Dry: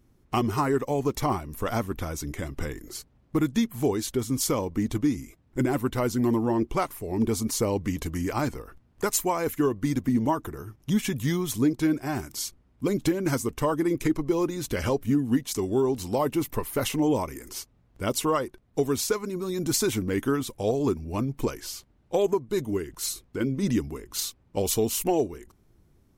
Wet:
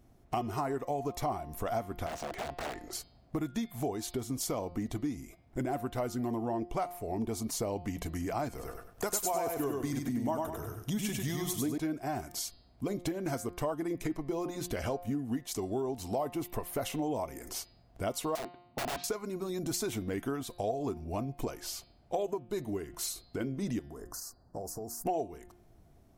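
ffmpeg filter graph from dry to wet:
ffmpeg -i in.wav -filter_complex "[0:a]asettb=1/sr,asplit=3[link_01][link_02][link_03];[link_01]atrim=end=2.064[link_04];[link_02]atrim=start=2.06:end=2.93,asetpts=PTS-STARTPTS,afade=type=in:duration=0.004:curve=qsin,afade=type=out:start_time=0.866:duration=0.004:curve=qsin,lowpass=9900,aeval=exprs='(mod(26.6*val(0)+1,2)-1)/26.6':channel_layout=same,asplit=2[link_05][link_06];[link_06]highpass=frequency=720:poles=1,volume=6dB,asoftclip=type=tanh:threshold=-26dB[link_07];[link_05][link_07]amix=inputs=2:normalize=0,lowpass=frequency=2600:poles=1,volume=-6dB[link_08];[link_03]atrim=start=2.926[link_09];[link_04][link_08]acrossfade=duration=0.004:curve1=hsin:curve2=qsin[link_10];[link_10][link_09]acrossfade=duration=0.004:curve1=qsin:curve2=hsin,asettb=1/sr,asplit=3[link_11][link_12][link_13];[link_11]atrim=end=8.494[link_14];[link_12]atrim=start=8.49:end=11.78,asetpts=PTS-STARTPTS,afade=type=in:duration=0.004:curve=qsin,afade=type=out:start_time=3.286:duration=0.004:curve=qsin,highshelf=frequency=3700:gain=7,aecho=1:1:98|196|294|392:0.668|0.194|0.0562|0.0163,atrim=end_sample=145089[link_15];[link_13]atrim=start=11.776[link_16];[link_14][link_15]acrossfade=duration=0.004:curve1=hsin:curve2=qsin[link_17];[link_17][link_16]acrossfade=duration=0.004:curve1=qsin:curve2=hsin,asettb=1/sr,asplit=3[link_18][link_19][link_20];[link_18]atrim=end=18.354[link_21];[link_19]atrim=start=18.35:end=19.04,asetpts=PTS-STARTPTS,afade=type=in:duration=0.004:curve=qsin,afade=type=out:start_time=0.686:duration=0.004:curve=qsin,highpass=110,equalizer=frequency=140:width_type=q:width=4:gain=8,equalizer=frequency=260:width_type=q:width=4:gain=7,equalizer=frequency=460:width_type=q:width=4:gain=-6,equalizer=frequency=1100:width_type=q:width=4:gain=5,equalizer=frequency=1600:width_type=q:width=4:gain=-8,lowpass=frequency=3200:width=0.5412,lowpass=frequency=3200:width=1.3066,aeval=exprs='(mod(18.8*val(0)+1,2)-1)/18.8':channel_layout=same[link_22];[link_20]atrim=start=19.036[link_23];[link_21][link_22]acrossfade=duration=0.004:curve1=hsin:curve2=qsin[link_24];[link_24][link_23]acrossfade=duration=0.004:curve1=qsin:curve2=hsin,asettb=1/sr,asplit=3[link_25][link_26][link_27];[link_25]atrim=end=23.794[link_28];[link_26]atrim=start=23.79:end=25.06,asetpts=PTS-STARTPTS,afade=type=in:duration=0.004:curve=qsin,afade=type=out:start_time=1.266:duration=0.004:curve=qsin,acompressor=threshold=-37dB:ratio=10:attack=3.2:release=140:knee=1:detection=peak,asuperstop=centerf=2900:order=12:qfactor=1,bandreject=frequency=58.88:width_type=h:width=4,bandreject=frequency=117.76:width_type=h:width=4,bandreject=frequency=176.64:width_type=h:width=4,bandreject=frequency=235.52:width_type=h:width=4,bandreject=frequency=294.4:width_type=h:width=4,bandreject=frequency=353.28:width_type=h:width=4[link_29];[link_27]atrim=start=25.056[link_30];[link_28][link_29]acrossfade=duration=0.004:curve1=hsin:curve2=qsin[link_31];[link_31][link_30]acrossfade=duration=0.004:curve1=qsin:curve2=hsin,equalizer=frequency=690:width=4.6:gain=14.5,bandreject=frequency=176.7:width_type=h:width=4,bandreject=frequency=353.4:width_type=h:width=4,bandreject=frequency=530.1:width_type=h:width=4,bandreject=frequency=706.8:width_type=h:width=4,bandreject=frequency=883.5:width_type=h:width=4,bandreject=frequency=1060.2:width_type=h:width=4,bandreject=frequency=1236.9:width_type=h:width=4,bandreject=frequency=1413.6:width_type=h:width=4,bandreject=frequency=1590.3:width_type=h:width=4,bandreject=frequency=1767:width_type=h:width=4,bandreject=frequency=1943.7:width_type=h:width=4,bandreject=frequency=2120.4:width_type=h:width=4,bandreject=frequency=2297.1:width_type=h:width=4,bandreject=frequency=2473.8:width_type=h:width=4,bandreject=frequency=2650.5:width_type=h:width=4,bandreject=frequency=2827.2:width_type=h:width=4,bandreject=frequency=3003.9:width_type=h:width=4,bandreject=frequency=3180.6:width_type=h:width=4,bandreject=frequency=3357.3:width_type=h:width=4,bandreject=frequency=3534:width_type=h:width=4,bandreject=frequency=3710.7:width_type=h:width=4,bandreject=frequency=3887.4:width_type=h:width=4,bandreject=frequency=4064.1:width_type=h:width=4,bandreject=frequency=4240.8:width_type=h:width=4,bandreject=frequency=4417.5:width_type=h:width=4,bandreject=frequency=4594.2:width_type=h:width=4,bandreject=frequency=4770.9:width_type=h:width=4,bandreject=frequency=4947.6:width_type=h:width=4,acompressor=threshold=-36dB:ratio=2.5" out.wav

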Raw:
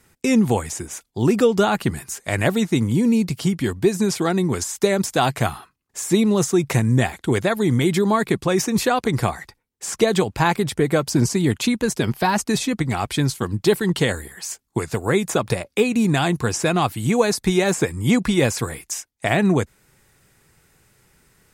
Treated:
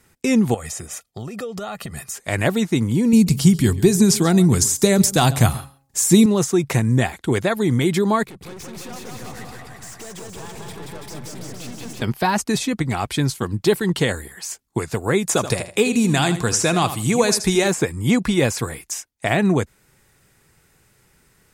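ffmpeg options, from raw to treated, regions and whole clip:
ffmpeg -i in.wav -filter_complex "[0:a]asettb=1/sr,asplit=3[link_01][link_02][link_03];[link_01]atrim=end=0.544[link_04];[link_02]atrim=start=0.54:end=2.16,asetpts=PTS-STARTPTS,afade=type=in:duration=0.004:curve=qsin,afade=type=out:start_time=1.616:duration=0.004:curve=qsin,highpass=frequency=100:poles=1,acompressor=threshold=-26dB:ratio=12:attack=3.2:release=140:knee=1:detection=peak,aecho=1:1:1.6:0.58,atrim=end_sample=71442[link_05];[link_03]atrim=start=2.156[link_06];[link_04][link_05]acrossfade=duration=0.004:curve1=hsin:curve2=qsin[link_07];[link_07][link_06]acrossfade=duration=0.004:curve1=qsin:curve2=hsin,asettb=1/sr,asplit=3[link_08][link_09][link_10];[link_08]atrim=end=3.134[link_11];[link_09]atrim=start=3.13:end=6.26,asetpts=PTS-STARTPTS,afade=type=in:duration=0.004:curve=qsin,afade=type=out:start_time=3.126:duration=0.004:curve=qsin,bass=frequency=250:gain=10,treble=frequency=4000:gain=10,bandreject=frequency=136.1:width_type=h:width=4,bandreject=frequency=272.2:width_type=h:width=4,bandreject=frequency=408.3:width_type=h:width=4,bandreject=frequency=544.4:width_type=h:width=4,bandreject=frequency=680.5:width_type=h:width=4,bandreject=frequency=816.6:width_type=h:width=4,bandreject=frequency=952.7:width_type=h:width=4,bandreject=frequency=1088.8:width_type=h:width=4,aecho=1:1:136:0.106,atrim=end_sample=138033[link_12];[link_10]atrim=start=6.256[link_13];[link_11][link_12]acrossfade=duration=0.004:curve1=hsin:curve2=qsin[link_14];[link_14][link_13]acrossfade=duration=0.004:curve1=qsin:curve2=hsin,asettb=1/sr,asplit=3[link_15][link_16][link_17];[link_15]atrim=end=8.234[link_18];[link_16]atrim=start=8.23:end=12.02,asetpts=PTS-STARTPTS,afade=type=in:duration=0.004:curve=qsin,afade=type=out:start_time=3.786:duration=0.004:curve=qsin,acompressor=threshold=-30dB:ratio=3:attack=3.2:release=140:knee=1:detection=peak,aeval=exprs='(tanh(63.1*val(0)+0.3)-tanh(0.3))/63.1':channel_layout=same,aecho=1:1:180|333|463|573.6|667.6|747.4:0.794|0.631|0.501|0.398|0.316|0.251,atrim=end_sample=167139[link_19];[link_17]atrim=start=12.016[link_20];[link_18][link_19]acrossfade=duration=0.004:curve1=hsin:curve2=qsin[link_21];[link_21][link_20]acrossfade=duration=0.004:curve1=qsin:curve2=hsin,asettb=1/sr,asplit=3[link_22][link_23][link_24];[link_22]atrim=end=15.274[link_25];[link_23]atrim=start=15.27:end=17.68,asetpts=PTS-STARTPTS,afade=type=in:duration=0.004:curve=qsin,afade=type=out:start_time=2.406:duration=0.004:curve=qsin,equalizer=frequency=7500:width_type=o:width=1.9:gain=7,aecho=1:1:80|160|240:0.266|0.0612|0.0141,atrim=end_sample=106281[link_26];[link_24]atrim=start=17.676[link_27];[link_25][link_26]acrossfade=duration=0.004:curve1=hsin:curve2=qsin[link_28];[link_28][link_27]acrossfade=duration=0.004:curve1=qsin:curve2=hsin" out.wav

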